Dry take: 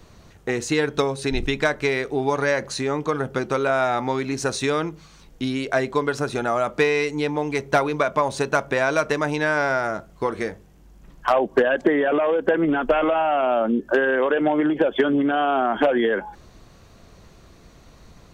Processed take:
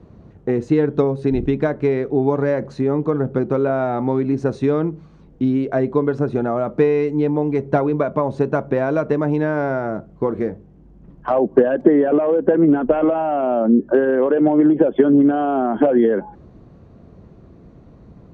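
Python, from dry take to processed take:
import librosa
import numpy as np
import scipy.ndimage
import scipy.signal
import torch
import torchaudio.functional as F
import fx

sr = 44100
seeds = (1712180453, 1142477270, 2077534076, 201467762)

y = fx.bandpass_q(x, sr, hz=270.0, q=0.52)
y = fx.low_shelf(y, sr, hz=400.0, db=8.5)
y = y * 10.0 ** (2.0 / 20.0)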